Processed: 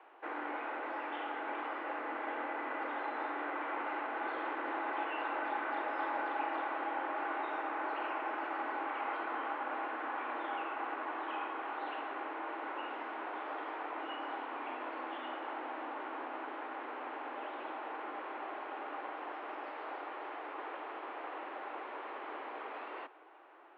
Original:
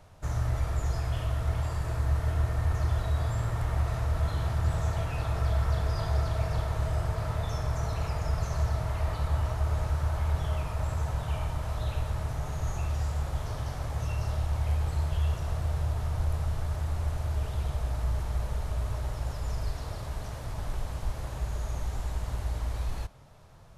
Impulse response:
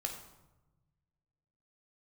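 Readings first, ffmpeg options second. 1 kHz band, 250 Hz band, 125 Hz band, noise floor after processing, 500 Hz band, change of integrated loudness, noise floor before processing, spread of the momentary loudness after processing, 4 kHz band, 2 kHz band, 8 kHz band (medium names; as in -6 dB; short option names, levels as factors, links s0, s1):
+3.5 dB, -3.0 dB, under -40 dB, -45 dBFS, -2.5 dB, -8.0 dB, -38 dBFS, 7 LU, -7.0 dB, +4.5 dB, under -35 dB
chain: -af "highpass=f=200:t=q:w=0.5412,highpass=f=200:t=q:w=1.307,lowpass=f=2700:t=q:w=0.5176,lowpass=f=2700:t=q:w=0.7071,lowpass=f=2700:t=q:w=1.932,afreqshift=180,volume=1.19"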